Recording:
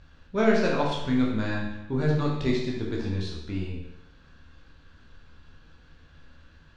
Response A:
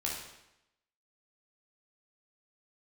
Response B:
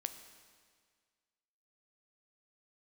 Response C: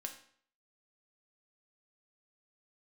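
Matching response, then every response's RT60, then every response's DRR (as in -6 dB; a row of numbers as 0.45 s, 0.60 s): A; 0.85 s, 1.8 s, 0.55 s; -3.5 dB, 8.5 dB, 3.0 dB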